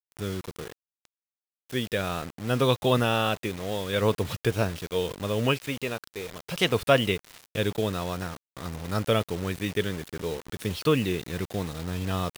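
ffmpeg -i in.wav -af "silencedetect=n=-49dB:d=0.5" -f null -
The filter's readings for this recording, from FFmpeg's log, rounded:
silence_start: 1.05
silence_end: 1.69 | silence_duration: 0.64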